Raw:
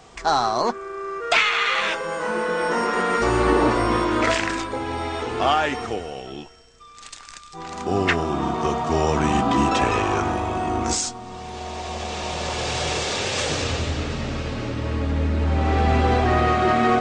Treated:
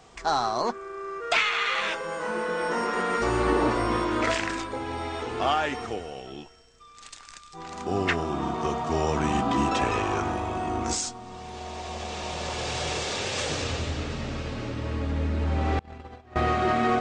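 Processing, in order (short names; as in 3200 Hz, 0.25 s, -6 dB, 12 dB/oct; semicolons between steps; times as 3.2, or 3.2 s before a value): 15.79–16.36 gate -14 dBFS, range -32 dB; gain -5 dB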